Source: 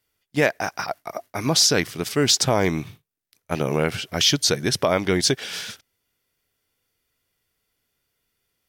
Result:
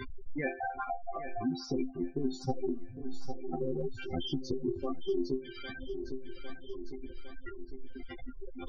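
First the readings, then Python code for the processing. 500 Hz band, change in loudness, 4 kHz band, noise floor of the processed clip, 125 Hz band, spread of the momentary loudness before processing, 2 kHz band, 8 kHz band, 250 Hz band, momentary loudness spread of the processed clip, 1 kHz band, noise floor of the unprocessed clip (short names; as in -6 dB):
-11.5 dB, -16.0 dB, -23.5 dB, -47 dBFS, -14.5 dB, 14 LU, -17.0 dB, -34.5 dB, -8.5 dB, 14 LU, -11.0 dB, -80 dBFS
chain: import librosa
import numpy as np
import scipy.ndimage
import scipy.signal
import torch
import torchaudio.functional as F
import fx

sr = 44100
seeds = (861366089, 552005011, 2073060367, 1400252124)

y = x + 0.5 * 10.0 ** (-25.5 / 20.0) * np.sign(x)
y = fx.lowpass(y, sr, hz=3300.0, slope=6)
y = fx.low_shelf(y, sr, hz=290.0, db=12.0)
y = fx.resonator_bank(y, sr, root=60, chord='sus4', decay_s=0.36)
y = fx.spec_gate(y, sr, threshold_db=-10, keep='strong')
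y = fx.transient(y, sr, attack_db=2, sustain_db=-4)
y = fx.echo_feedback(y, sr, ms=805, feedback_pct=36, wet_db=-17.5)
y = fx.band_squash(y, sr, depth_pct=70)
y = y * librosa.db_to_amplitude(5.0)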